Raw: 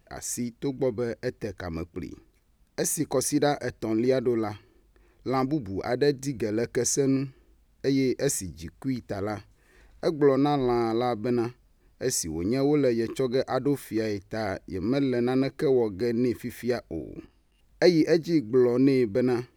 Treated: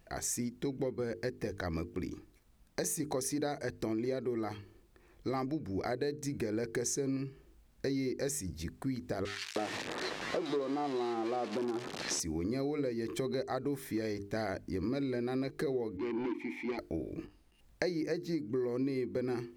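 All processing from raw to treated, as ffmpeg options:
-filter_complex "[0:a]asettb=1/sr,asplit=3[a][b][c];[a]atrim=end=9.254[d];[b]atrim=start=9.25:end=12.2,asetpts=PTS-STARTPTS,afade=t=in:d=0.004:c=qsin,afade=t=out:st=2.946:d=0.004:c=qsin,aeval=exprs='val(0)+0.5*0.0531*sgn(val(0))':c=same,highpass=260,lowpass=5.2k,acrossover=split=1600[e][f];[e]adelay=310[g];[g][f]amix=inputs=2:normalize=0,atrim=end_sample=130095[h];[c]atrim=start=12.196[i];[d][h]acrossfade=d=0.004:c1=hsin:c2=qsin[j];[j][i]acrossfade=d=0.004:c1=qsin:c2=hsin,asettb=1/sr,asplit=3[k][l][m];[k]atrim=end=15.974[n];[l]atrim=start=15.97:end=16.79,asetpts=PTS-STARTPTS,afade=t=in:d=0.004:c=qsin,afade=t=out:st=0.816:d=0.004:c=qsin,asplit=3[o][p][q];[o]bandpass=f=300:t=q:w=8,volume=0dB[r];[p]bandpass=f=870:t=q:w=8,volume=-6dB[s];[q]bandpass=f=2.24k:t=q:w=8,volume=-9dB[t];[r][s][t]amix=inputs=3:normalize=0,asplit=2[u][v];[v]highpass=f=720:p=1,volume=23dB,asoftclip=type=tanh:threshold=-23.5dB[w];[u][w]amix=inputs=2:normalize=0,lowpass=f=6.2k:p=1,volume=-6dB[x];[m]atrim=start=16.786[y];[n][x]acrossfade=d=0.004:c1=hsin:c2=qsin[z];[z][y]acrossfade=d=0.004:c1=qsin:c2=hsin,bandreject=f=50:t=h:w=6,bandreject=f=100:t=h:w=6,bandreject=f=150:t=h:w=6,bandreject=f=200:t=h:w=6,bandreject=f=250:t=h:w=6,bandreject=f=300:t=h:w=6,bandreject=f=350:t=h:w=6,bandreject=f=400:t=h:w=6,bandreject=f=450:t=h:w=6,acompressor=threshold=-32dB:ratio=6"

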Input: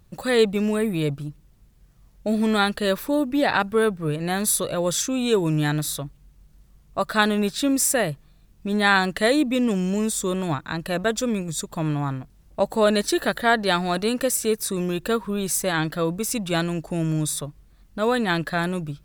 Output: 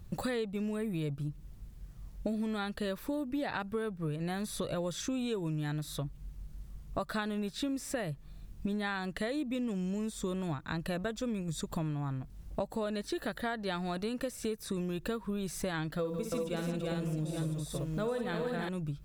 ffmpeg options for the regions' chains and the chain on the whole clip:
-filter_complex "[0:a]asettb=1/sr,asplit=3[a][b][c];[a]atrim=end=15.994[d];[b]atrim=start=15.99:end=18.69,asetpts=PTS-STARTPTS,afade=t=in:d=0.004:c=qsin,afade=t=out:st=2.696:d=0.004:c=qsin,equalizer=f=500:t=o:w=0.27:g=8,aecho=1:1:58|148|329|386|819:0.447|0.335|0.668|0.596|0.299,atrim=end_sample=119070,acrusher=bits=7:mix=0:aa=0.5[e];[c]atrim=start=18.686[f];[d][e]acrossfade=d=0.004:c1=hsin:c2=qsin[g];[g][f]acrossfade=d=0.004:c1=qsin:c2=hsin,acrossover=split=4500[h][i];[i]acompressor=threshold=-35dB:ratio=4:attack=1:release=60[j];[h][j]amix=inputs=2:normalize=0,lowshelf=f=190:g=8,acompressor=threshold=-32dB:ratio=10"

